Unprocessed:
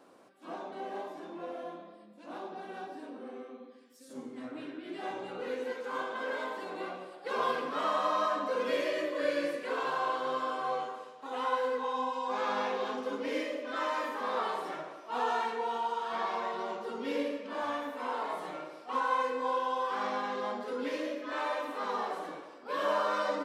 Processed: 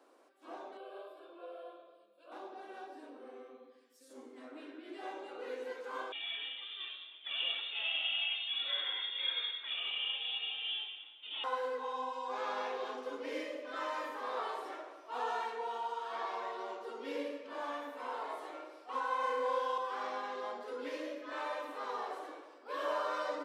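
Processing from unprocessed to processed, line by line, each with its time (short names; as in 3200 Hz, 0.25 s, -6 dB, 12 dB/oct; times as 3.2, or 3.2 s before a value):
0.77–2.32 fixed phaser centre 1300 Hz, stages 8
6.12–11.44 inverted band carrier 3900 Hz
19.19–19.78 flutter echo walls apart 5.8 m, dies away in 0.88 s
whole clip: steep high-pass 280 Hz 36 dB/oct; gain -5.5 dB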